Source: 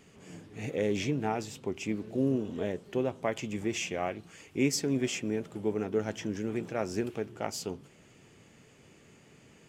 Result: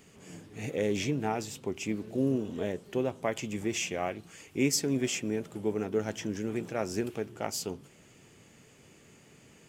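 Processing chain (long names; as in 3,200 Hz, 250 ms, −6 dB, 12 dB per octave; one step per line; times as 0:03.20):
high-shelf EQ 7,400 Hz +8 dB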